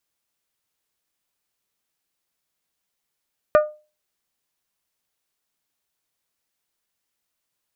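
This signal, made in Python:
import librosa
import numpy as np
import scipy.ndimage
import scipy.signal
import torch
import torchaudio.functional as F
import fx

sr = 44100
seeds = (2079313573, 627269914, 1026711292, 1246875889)

y = fx.strike_glass(sr, length_s=0.89, level_db=-8, body='bell', hz=606.0, decay_s=0.32, tilt_db=6.5, modes=5)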